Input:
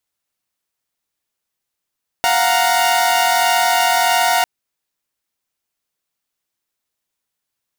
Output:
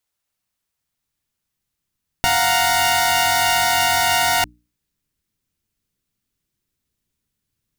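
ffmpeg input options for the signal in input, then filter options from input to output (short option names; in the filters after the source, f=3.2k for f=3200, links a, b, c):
-f lavfi -i "aevalsrc='0.178*((2*mod(698.46*t,1)-1)+(2*mod(739.99*t,1)-1)+(2*mod(932.33*t,1)-1))':d=2.2:s=44100"
-af "bandreject=f=60:t=h:w=6,bandreject=f=120:t=h:w=6,bandreject=f=180:t=h:w=6,bandreject=f=240:t=h:w=6,bandreject=f=300:t=h:w=6,asubboost=boost=9.5:cutoff=230"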